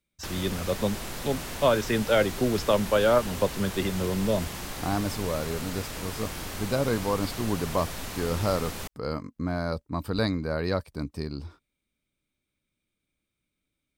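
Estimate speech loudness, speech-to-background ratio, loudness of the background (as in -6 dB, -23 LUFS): -28.5 LUFS, 7.5 dB, -36.0 LUFS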